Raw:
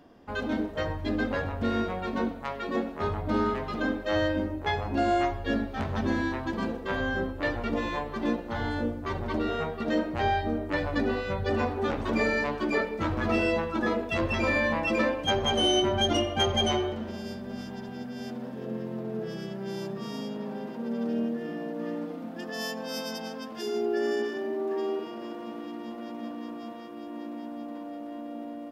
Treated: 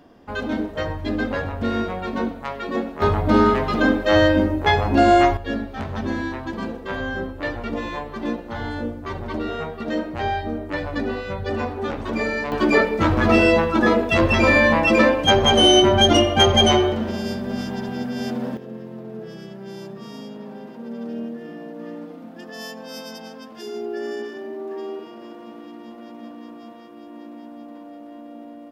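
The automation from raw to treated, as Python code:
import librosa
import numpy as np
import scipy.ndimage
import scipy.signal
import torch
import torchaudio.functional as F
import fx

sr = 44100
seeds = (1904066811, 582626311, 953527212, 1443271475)

y = fx.gain(x, sr, db=fx.steps((0.0, 4.5), (3.02, 11.0), (5.37, 2.0), (12.52, 10.5), (18.57, -1.0)))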